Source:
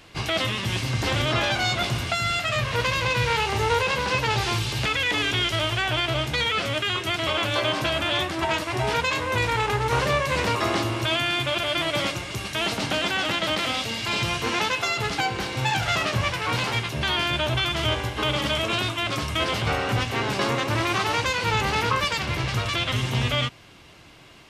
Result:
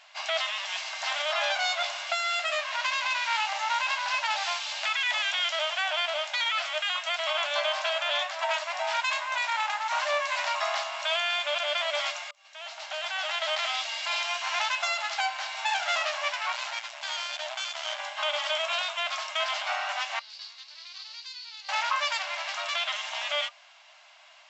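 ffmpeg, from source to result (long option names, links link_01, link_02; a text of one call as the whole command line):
ffmpeg -i in.wav -filter_complex "[0:a]asettb=1/sr,asplit=3[link_01][link_02][link_03];[link_01]atrim=end=16.524[link_04];[link_02]atrim=start=16.52:end=17.99,asetpts=PTS-STARTPTS,afade=type=in:duration=0.004:curve=qsin,afade=type=out:start_time=1.466:duration=0.004:curve=qsin,aeval=exprs='max(val(0),0)':channel_layout=same[link_05];[link_03]atrim=start=17.986[link_06];[link_04][link_05]acrossfade=duration=0.004:curve1=hsin:curve2=qsin[link_07];[link_07][link_06]acrossfade=duration=0.004:curve1=qsin:curve2=hsin,asettb=1/sr,asplit=3[link_08][link_09][link_10];[link_08]atrim=end=20.194[link_11];[link_09]atrim=start=20.19:end=21.69,asetpts=PTS-STARTPTS,afade=type=in:duration=0.004:curve=qsin,afade=type=out:start_time=1.496:duration=0.004:curve=qsin,bandpass=frequency=4500:width_type=q:width=6.5[link_12];[link_10]atrim=start=21.686[link_13];[link_11][link_12]acrossfade=duration=0.004:curve1=hsin:curve2=qsin[link_14];[link_14][link_13]acrossfade=duration=0.004:curve1=qsin:curve2=hsin,asplit=2[link_15][link_16];[link_15]atrim=end=12.31,asetpts=PTS-STARTPTS,afade=type=out:start_time=12.306:duration=0.004:curve=hsin[link_17];[link_16]atrim=start=12.31,asetpts=PTS-STARTPTS,afade=type=in:duration=1.23[link_18];[link_17][link_18]concat=n=2:v=0:a=1,afftfilt=real='re*between(b*sr/4096,580,7800)':imag='im*between(b*sr/4096,580,7800)':win_size=4096:overlap=0.75,bandreject=frequency=1200:width=30,volume=-3dB" out.wav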